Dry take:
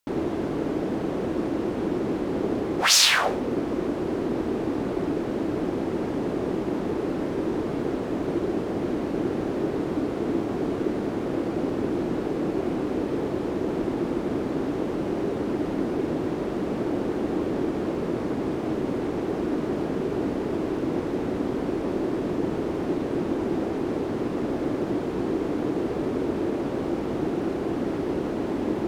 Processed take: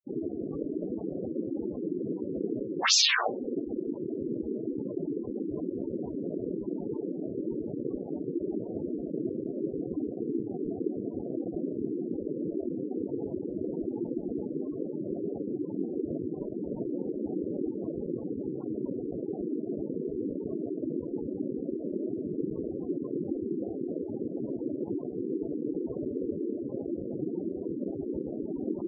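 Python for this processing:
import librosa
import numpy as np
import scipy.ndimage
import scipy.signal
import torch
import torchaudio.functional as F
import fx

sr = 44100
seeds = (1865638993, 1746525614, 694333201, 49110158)

y = np.sign(x) * np.maximum(np.abs(x) - 10.0 ** (-33.0 / 20.0), 0.0)
y = fx.spec_gate(y, sr, threshold_db=-10, keep='strong')
y = y * librosa.db_to_amplitude(-2.0)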